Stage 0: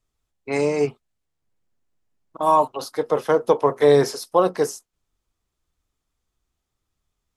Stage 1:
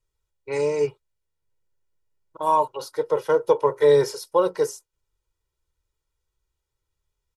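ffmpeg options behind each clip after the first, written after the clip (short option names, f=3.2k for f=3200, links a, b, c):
-af "aecho=1:1:2.1:0.88,volume=-6dB"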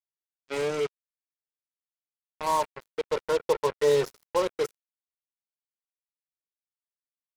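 -af "acrusher=bits=3:mix=0:aa=0.5,volume=-6dB"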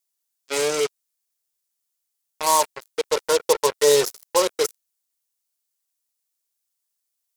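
-af "bass=f=250:g=-9,treble=f=4k:g=13,volume=6dB"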